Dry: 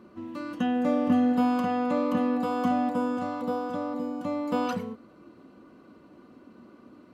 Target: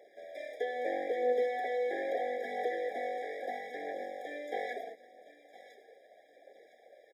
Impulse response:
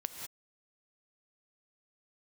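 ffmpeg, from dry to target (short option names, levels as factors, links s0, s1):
-filter_complex "[0:a]aeval=exprs='abs(val(0))':c=same,highpass=f=390:w=0.5412,highpass=f=390:w=1.3066,aecho=1:1:1011|2022:0.1|0.028,acrossover=split=2600[s0][s1];[s1]acompressor=threshold=0.00178:ratio=4:attack=1:release=60[s2];[s0][s2]amix=inputs=2:normalize=0,aphaser=in_gain=1:out_gain=1:delay=2.5:decay=0.32:speed=0.77:type=triangular,afftfilt=real='re*eq(mod(floor(b*sr/1024/800),2),0)':imag='im*eq(mod(floor(b*sr/1024/800),2),0)':win_size=1024:overlap=0.75"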